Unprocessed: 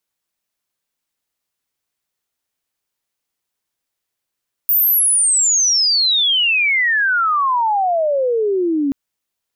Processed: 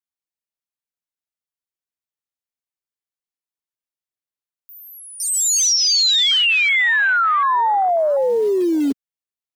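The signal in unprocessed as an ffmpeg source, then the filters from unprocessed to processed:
-f lavfi -i "aevalsrc='pow(10,(-11-3.5*t/4.23)/20)*sin(2*PI*15000*4.23/log(270/15000)*(exp(log(270/15000)*t/4.23)-1))':duration=4.23:sample_rate=44100"
-filter_complex "[0:a]acrossover=split=7400[link_01][link_02];[link_02]acompressor=threshold=-25dB:ratio=4:attack=1:release=60[link_03];[link_01][link_03]amix=inputs=2:normalize=0,afwtdn=0.1,acrossover=split=330[link_04][link_05];[link_04]acrusher=bits=4:mode=log:mix=0:aa=0.000001[link_06];[link_06][link_05]amix=inputs=2:normalize=0"

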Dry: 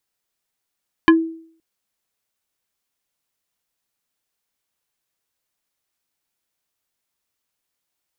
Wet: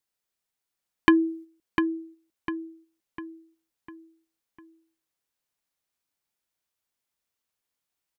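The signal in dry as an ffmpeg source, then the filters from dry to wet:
-f lavfi -i "aevalsrc='0.562*pow(10,-3*t/0.55)*sin(2*PI*326*t+1.4*pow(10,-3*t/0.12)*sin(2*PI*4.19*326*t))':duration=0.52:sample_rate=44100"
-filter_complex "[0:a]agate=range=-6dB:threshold=-40dB:ratio=16:detection=peak,acompressor=threshold=-14dB:ratio=6,asplit=2[link_01][link_02];[link_02]adelay=701,lowpass=frequency=4100:poles=1,volume=-6.5dB,asplit=2[link_03][link_04];[link_04]adelay=701,lowpass=frequency=4100:poles=1,volume=0.45,asplit=2[link_05][link_06];[link_06]adelay=701,lowpass=frequency=4100:poles=1,volume=0.45,asplit=2[link_07][link_08];[link_08]adelay=701,lowpass=frequency=4100:poles=1,volume=0.45,asplit=2[link_09][link_10];[link_10]adelay=701,lowpass=frequency=4100:poles=1,volume=0.45[link_11];[link_03][link_05][link_07][link_09][link_11]amix=inputs=5:normalize=0[link_12];[link_01][link_12]amix=inputs=2:normalize=0"

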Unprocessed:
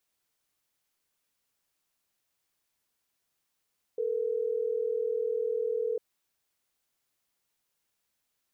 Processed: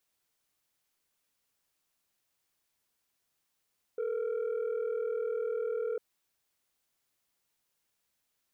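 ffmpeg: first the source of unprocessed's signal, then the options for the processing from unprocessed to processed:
-f lavfi -i "aevalsrc='0.0316*(sin(2*PI*440*t)+sin(2*PI*480*t))*clip(min(mod(t,6),2-mod(t,6))/0.005,0,1)':duration=3.12:sample_rate=44100"
-af "asoftclip=type=tanh:threshold=-28.5dB"

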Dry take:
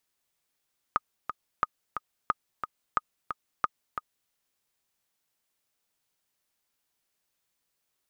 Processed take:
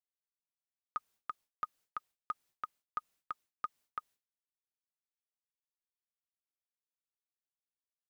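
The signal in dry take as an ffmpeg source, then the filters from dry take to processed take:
-f lavfi -i "aevalsrc='pow(10,(-10.5-8*gte(mod(t,2*60/179),60/179))/20)*sin(2*PI*1240*mod(t,60/179))*exp(-6.91*mod(t,60/179)/0.03)':duration=3.35:sample_rate=44100"
-af "agate=range=-33dB:threshold=-52dB:ratio=3:detection=peak,areverse,acompressor=threshold=-36dB:ratio=6,areverse"

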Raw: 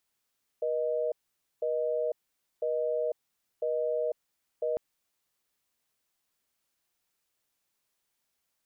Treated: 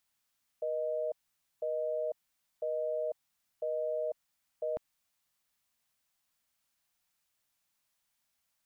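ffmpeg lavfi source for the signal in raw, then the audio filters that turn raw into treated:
-f lavfi -i "aevalsrc='0.0335*(sin(2*PI*480*t)+sin(2*PI*620*t))*clip(min(mod(t,1),0.5-mod(t,1))/0.005,0,1)':duration=4.15:sample_rate=44100"
-af "equalizer=frequency=400:width=2.3:gain=-11.5"

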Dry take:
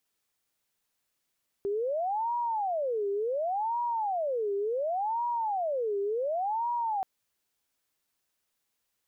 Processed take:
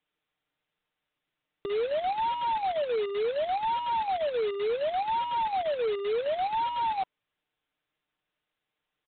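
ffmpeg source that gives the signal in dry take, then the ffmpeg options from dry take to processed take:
-f lavfi -i "aevalsrc='0.0447*sin(2*PI*(678*t-280/(2*PI*0.69)*sin(2*PI*0.69*t)))':duration=5.38:sample_rate=44100"
-af "bandreject=frequency=990:width=26,aecho=1:1:6.6:0.5,aresample=8000,acrusher=bits=2:mode=log:mix=0:aa=0.000001,aresample=44100"

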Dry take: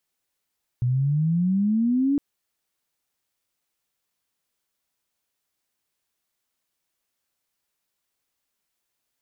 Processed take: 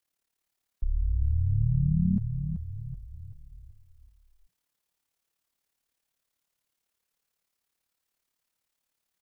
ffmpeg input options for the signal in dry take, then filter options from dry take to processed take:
-f lavfi -i "aevalsrc='pow(10,(-19+1*t/1.36)/20)*sin(2*PI*120*1.36/log(290/120)*(exp(log(290/120)*t/1.36)-1))':duration=1.36:sample_rate=44100"
-filter_complex "[0:a]afreqshift=-90,tremolo=f=36:d=0.788,asplit=2[link_01][link_02];[link_02]asplit=6[link_03][link_04][link_05][link_06][link_07][link_08];[link_03]adelay=381,afreqshift=-32,volume=-7dB[link_09];[link_04]adelay=762,afreqshift=-64,volume=-12.7dB[link_10];[link_05]adelay=1143,afreqshift=-96,volume=-18.4dB[link_11];[link_06]adelay=1524,afreqshift=-128,volume=-24dB[link_12];[link_07]adelay=1905,afreqshift=-160,volume=-29.7dB[link_13];[link_08]adelay=2286,afreqshift=-192,volume=-35.4dB[link_14];[link_09][link_10][link_11][link_12][link_13][link_14]amix=inputs=6:normalize=0[link_15];[link_01][link_15]amix=inputs=2:normalize=0"

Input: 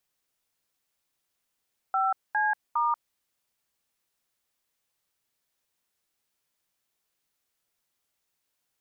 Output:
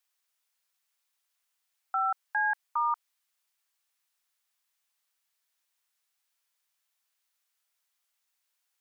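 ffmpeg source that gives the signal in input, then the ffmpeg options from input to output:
-f lavfi -i "aevalsrc='0.0562*clip(min(mod(t,0.407),0.187-mod(t,0.407))/0.002,0,1)*(eq(floor(t/0.407),0)*(sin(2*PI*770*mod(t,0.407))+sin(2*PI*1336*mod(t,0.407)))+eq(floor(t/0.407),1)*(sin(2*PI*852*mod(t,0.407))+sin(2*PI*1633*mod(t,0.407)))+eq(floor(t/0.407),2)*(sin(2*PI*941*mod(t,0.407))+sin(2*PI*1209*mod(t,0.407))))':duration=1.221:sample_rate=44100"
-af "highpass=900"

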